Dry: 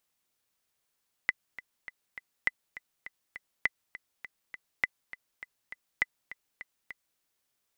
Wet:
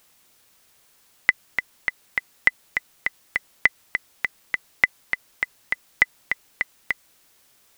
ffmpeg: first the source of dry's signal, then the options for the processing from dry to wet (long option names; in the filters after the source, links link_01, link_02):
-f lavfi -i "aevalsrc='pow(10,(-11.5-16.5*gte(mod(t,4*60/203),60/203))/20)*sin(2*PI*2010*mod(t,60/203))*exp(-6.91*mod(t,60/203)/0.03)':duration=5.91:sample_rate=44100"
-af "alimiter=level_in=20.5dB:limit=-1dB:release=50:level=0:latency=1"